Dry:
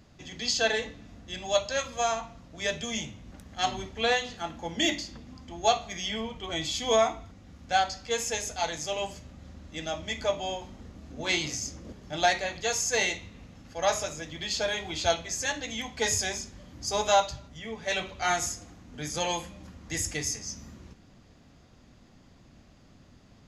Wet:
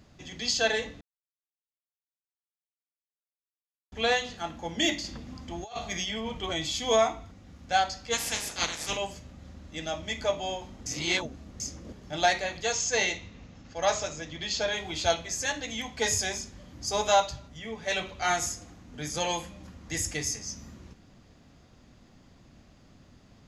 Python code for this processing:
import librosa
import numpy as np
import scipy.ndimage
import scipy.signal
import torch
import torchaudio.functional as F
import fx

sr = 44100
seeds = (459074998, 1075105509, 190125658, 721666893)

y = fx.over_compress(x, sr, threshold_db=-35.0, ratio=-1.0, at=(5.04, 6.53))
y = fx.spec_clip(y, sr, under_db=22, at=(8.12, 8.96), fade=0.02)
y = fx.resample_bad(y, sr, factor=3, down='none', up='filtered', at=(12.63, 14.76))
y = fx.edit(y, sr, fx.silence(start_s=1.01, length_s=2.91),
    fx.reverse_span(start_s=10.86, length_s=0.74), tone=tone)